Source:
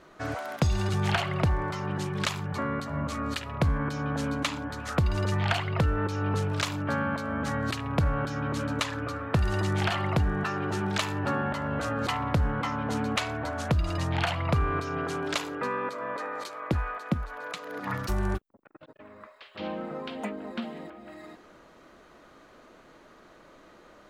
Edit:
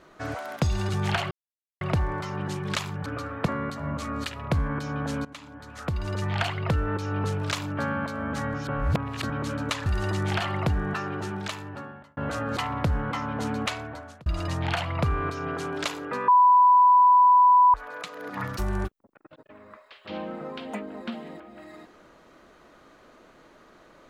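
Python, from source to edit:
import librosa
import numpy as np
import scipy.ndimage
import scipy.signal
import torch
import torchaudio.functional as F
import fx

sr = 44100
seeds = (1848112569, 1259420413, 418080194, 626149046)

y = fx.edit(x, sr, fx.insert_silence(at_s=1.31, length_s=0.5),
    fx.fade_in_from(start_s=4.35, length_s=1.22, floor_db=-18.0),
    fx.reverse_span(start_s=7.64, length_s=0.76),
    fx.move(start_s=8.96, length_s=0.4, to_s=2.56),
    fx.fade_out_span(start_s=10.44, length_s=1.23),
    fx.fade_out_span(start_s=13.12, length_s=0.64),
    fx.bleep(start_s=15.78, length_s=1.46, hz=992.0, db=-13.0), tone=tone)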